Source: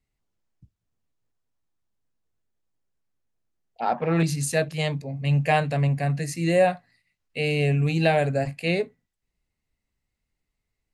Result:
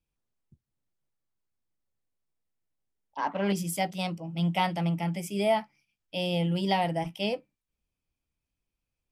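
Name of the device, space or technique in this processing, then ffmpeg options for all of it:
nightcore: -af "asetrate=52920,aresample=44100,volume=-5.5dB"

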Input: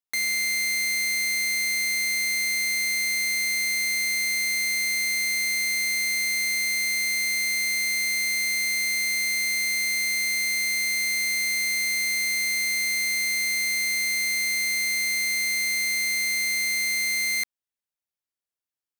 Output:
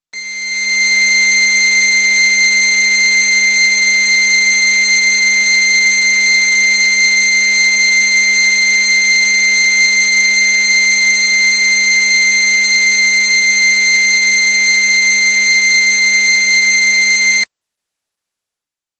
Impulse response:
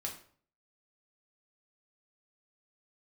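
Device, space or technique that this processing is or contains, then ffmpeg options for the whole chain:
video call: -af "highpass=frequency=100:poles=1,dynaudnorm=framelen=120:gausssize=11:maxgain=15dB,volume=1.5dB" -ar 48000 -c:a libopus -b:a 12k

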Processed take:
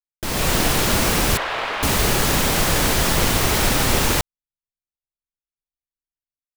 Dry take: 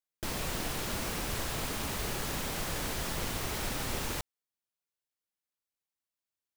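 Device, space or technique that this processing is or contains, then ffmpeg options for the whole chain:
voice memo with heavy noise removal: -filter_complex "[0:a]asettb=1/sr,asplit=3[link_01][link_02][link_03];[link_01]atrim=end=1.374[link_04];[link_02]atrim=start=1.37:end=1.83,asetpts=PTS-STARTPTS,afade=type=in:duration=0.004:curve=qsin,afade=type=out:start_time=0.456:duration=0.004:curve=qsin,acrossover=split=490 3500:gain=0.0708 1 0.0708[link_05][link_06][link_07];[link_05][link_06][link_07]amix=inputs=3:normalize=0[link_08];[link_03]atrim=start=1.826[link_09];[link_04][link_08]acrossfade=duration=0.004:curve1=hsin:curve2=qsin[link_10];[link_10][link_09]acrossfade=duration=0.004:curve1=qsin:curve2=hsin,anlmdn=0.0398,dynaudnorm=framelen=100:gausssize=7:maxgain=11dB,volume=5.5dB"

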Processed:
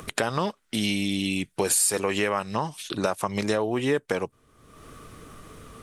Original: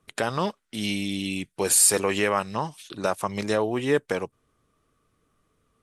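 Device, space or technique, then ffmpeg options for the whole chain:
upward and downward compression: -af "acompressor=mode=upward:threshold=-38dB:ratio=2.5,acompressor=threshold=-32dB:ratio=3,volume=8dB"

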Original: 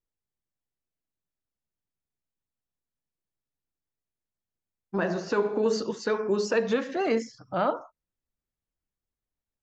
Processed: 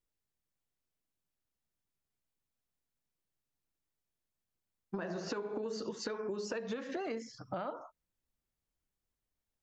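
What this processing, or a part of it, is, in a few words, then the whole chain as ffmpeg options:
serial compression, peaks first: -af "acompressor=threshold=-32dB:ratio=6,acompressor=threshold=-38dB:ratio=2.5,volume=1dB"

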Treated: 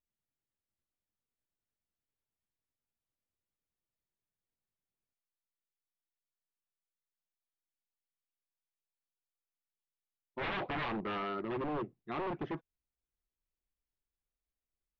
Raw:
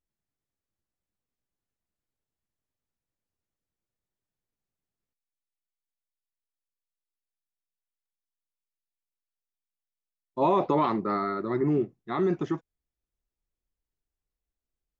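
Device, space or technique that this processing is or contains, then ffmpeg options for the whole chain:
synthesiser wavefolder: -af "aeval=exprs='0.0562*(abs(mod(val(0)/0.0562+3,4)-2)-1)':channel_layout=same,lowpass=frequency=3600:width=0.5412,lowpass=frequency=3600:width=1.3066,volume=-6dB"

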